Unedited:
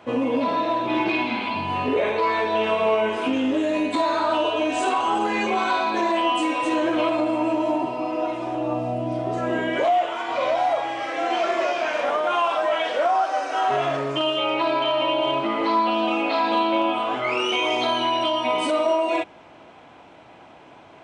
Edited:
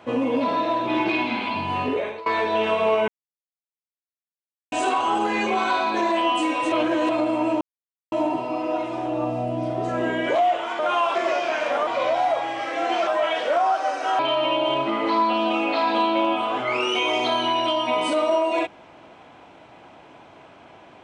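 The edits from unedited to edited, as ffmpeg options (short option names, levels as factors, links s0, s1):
-filter_complex "[0:a]asplit=12[s0][s1][s2][s3][s4][s5][s6][s7][s8][s9][s10][s11];[s0]atrim=end=2.26,asetpts=PTS-STARTPTS,afade=t=out:st=1.82:d=0.44:silence=0.0841395[s12];[s1]atrim=start=2.26:end=3.08,asetpts=PTS-STARTPTS,afade=t=in:d=0.004:c=hsin:silence=0.0841395,afade=t=out:st=0.816:d=0.004:c=hsin[s13];[s2]atrim=start=3.08:end=4.72,asetpts=PTS-STARTPTS,volume=0[s14];[s3]atrim=start=4.72:end=6.722,asetpts=PTS-STARTPTS,afade=t=in:d=0.004:c=hsin[s15];[s4]atrim=start=6.718:end=7.092,asetpts=PTS-STARTPTS,areverse[s16];[s5]atrim=start=7.088:end=7.61,asetpts=PTS-STARTPTS,afade=t=out:st=0.518:d=0.004:c=hsin,apad=pad_dur=0.51[s17];[s6]atrim=start=7.61:end=10.282,asetpts=PTS-STARTPTS,afade=t=in:d=0.004:c=hsin[s18];[s7]atrim=start=12.198:end=12.562[s19];[s8]atrim=start=11.478:end=12.202[s20];[s9]atrim=start=10.278:end=11.482[s21];[s10]atrim=start=12.558:end=13.682[s22];[s11]atrim=start=14.758[s23];[s12][s13][s14][s15]concat=n=4:v=0:a=1[s24];[s24][s16]acrossfade=d=0.004:c1=hsin:c2=hsin[s25];[s17][s18]concat=n=2:v=0:a=1[s26];[s25][s26]acrossfade=d=0.004:c1=hsin:c2=hsin[s27];[s27][s19]acrossfade=d=0.004:c1=hsin:c2=hsin[s28];[s28][s20]acrossfade=d=0.004:c1=hsin:c2=hsin[s29];[s29][s21]acrossfade=d=0.004:c1=hsin:c2=hsin[s30];[s30][s22]acrossfade=d=0.004:c1=hsin:c2=hsin[s31];[s31][s23]acrossfade=d=0.004:c1=hsin:c2=hsin"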